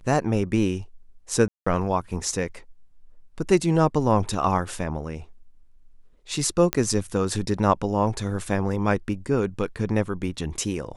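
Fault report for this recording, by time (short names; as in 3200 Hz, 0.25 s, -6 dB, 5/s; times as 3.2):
1.48–1.67 gap 0.185 s
6.73 pop -5 dBFS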